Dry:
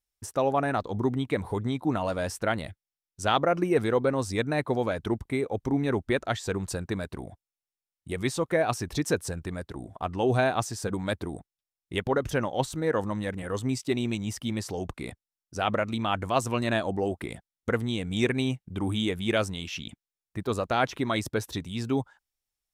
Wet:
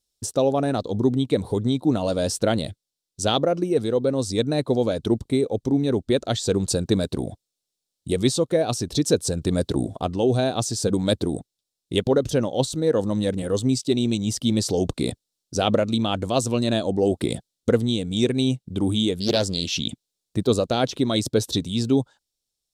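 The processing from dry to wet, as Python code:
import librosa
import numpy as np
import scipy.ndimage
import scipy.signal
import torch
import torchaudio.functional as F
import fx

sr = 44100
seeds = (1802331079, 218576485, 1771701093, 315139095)

y = fx.doppler_dist(x, sr, depth_ms=0.68, at=(19.2, 19.75))
y = fx.graphic_eq_10(y, sr, hz=(125, 250, 500, 1000, 2000, 4000, 8000), db=(5, 6, 7, -4, -8, 11, 7))
y = fx.rider(y, sr, range_db=10, speed_s=0.5)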